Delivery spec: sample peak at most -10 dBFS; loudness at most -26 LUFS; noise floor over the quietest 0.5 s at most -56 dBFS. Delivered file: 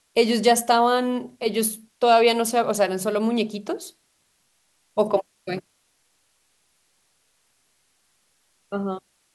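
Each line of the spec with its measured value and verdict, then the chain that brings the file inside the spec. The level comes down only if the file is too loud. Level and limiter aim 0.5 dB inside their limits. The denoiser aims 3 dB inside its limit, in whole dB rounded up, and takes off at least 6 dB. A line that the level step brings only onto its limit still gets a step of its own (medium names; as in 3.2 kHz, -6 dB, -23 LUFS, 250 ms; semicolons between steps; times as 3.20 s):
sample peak -5.5 dBFS: fail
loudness -22.5 LUFS: fail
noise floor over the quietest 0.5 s -67 dBFS: pass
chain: trim -4 dB; peak limiter -10.5 dBFS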